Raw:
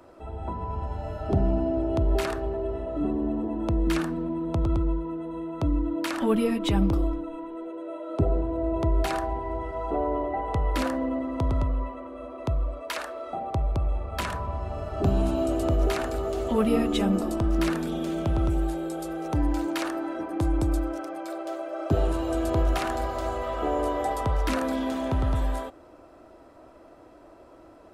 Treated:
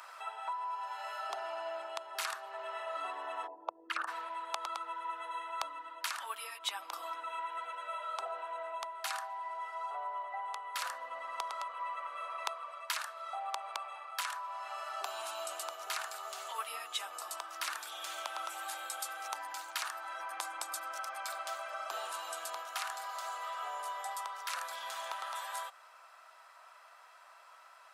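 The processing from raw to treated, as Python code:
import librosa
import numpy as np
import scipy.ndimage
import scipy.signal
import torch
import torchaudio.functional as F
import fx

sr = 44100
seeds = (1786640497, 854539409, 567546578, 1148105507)

y = fx.envelope_sharpen(x, sr, power=2.0, at=(3.46, 4.07), fade=0.02)
y = fx.highpass(y, sr, hz=450.0, slope=12, at=(7.58, 10.32))
y = scipy.signal.sosfilt(scipy.signal.cheby2(4, 80, 180.0, 'highpass', fs=sr, output='sos'), y)
y = fx.dynamic_eq(y, sr, hz=2100.0, q=0.83, threshold_db=-49.0, ratio=4.0, max_db=-6)
y = fx.rider(y, sr, range_db=10, speed_s=0.5)
y = y * 10.0 ** (3.0 / 20.0)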